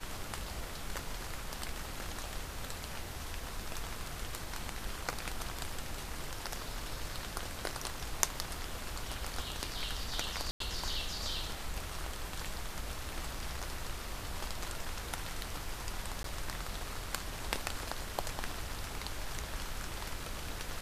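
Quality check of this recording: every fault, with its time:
0:10.51–0:10.60: drop-out 93 ms
0:16.23–0:16.24: drop-out 13 ms

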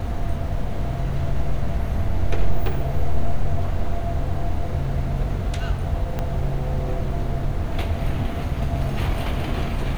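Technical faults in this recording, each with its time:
0:06.19: click −13 dBFS

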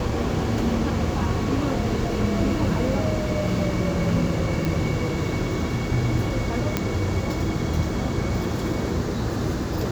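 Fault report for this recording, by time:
0:04.65: click −12 dBFS
0:06.77: click −7 dBFS

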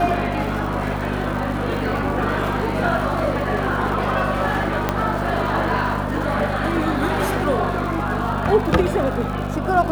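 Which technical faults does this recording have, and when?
surface crackle 180 per second −29 dBFS
mains hum 50 Hz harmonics 5 −26 dBFS
0:04.89: click −5 dBFS

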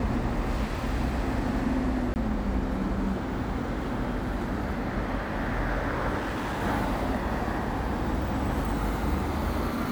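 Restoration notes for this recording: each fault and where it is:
0:02.14–0:02.16: drop-out 19 ms
0:06.17–0:06.63: clipping −27.5 dBFS

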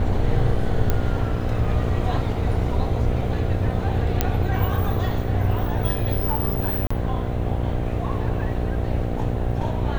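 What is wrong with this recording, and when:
mains buzz 60 Hz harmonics 13 −27 dBFS
0:00.90: click −8 dBFS
0:04.21: click −4 dBFS
0:06.87–0:06.91: drop-out 35 ms

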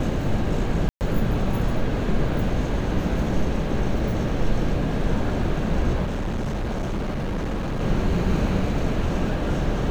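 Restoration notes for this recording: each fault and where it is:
0:00.89–0:01.01: drop-out 119 ms
0:06.04–0:07.81: clipping −23 dBFS

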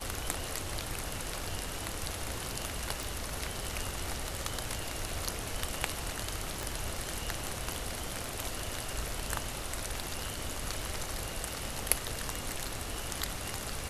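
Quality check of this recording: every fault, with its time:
0:03.03: click
0:06.63: click

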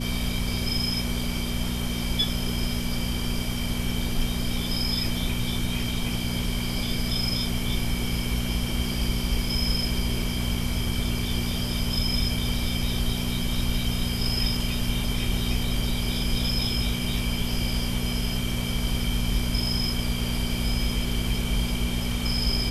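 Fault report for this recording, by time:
mains hum 60 Hz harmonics 4 −30 dBFS

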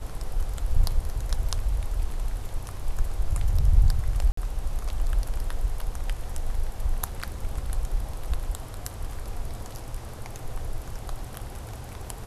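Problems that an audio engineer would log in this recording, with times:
0:04.32–0:04.37: drop-out 54 ms

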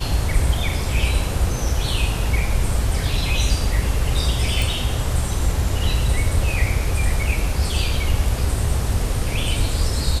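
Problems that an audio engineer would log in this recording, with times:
0:04.62: click

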